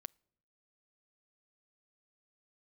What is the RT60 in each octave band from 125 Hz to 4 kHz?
1.1, 0.90, 0.80, 0.65, 0.60, 0.50 seconds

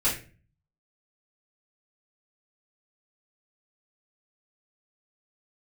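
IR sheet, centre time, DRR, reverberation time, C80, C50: 29 ms, −10.0 dB, 0.35 s, 12.0 dB, 7.0 dB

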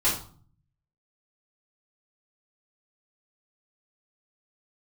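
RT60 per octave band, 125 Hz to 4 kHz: 1.0, 0.70, 0.45, 0.45, 0.35, 0.35 seconds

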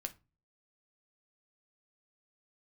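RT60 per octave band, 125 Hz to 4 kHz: 0.55, 0.45, 0.30, 0.30, 0.25, 0.20 seconds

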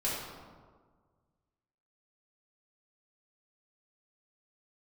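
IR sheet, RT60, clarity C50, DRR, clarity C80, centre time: 1.6 s, −0.5 dB, −8.0 dB, 2.0 dB, 89 ms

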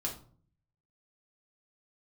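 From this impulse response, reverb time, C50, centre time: 0.45 s, 9.0 dB, 20 ms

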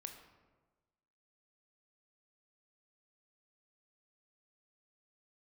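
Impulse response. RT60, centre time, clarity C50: 1.3 s, 24 ms, 7.5 dB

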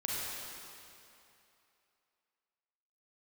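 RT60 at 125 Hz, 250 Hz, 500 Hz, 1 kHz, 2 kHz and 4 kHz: 2.5, 2.5, 2.7, 2.8, 2.7, 2.4 seconds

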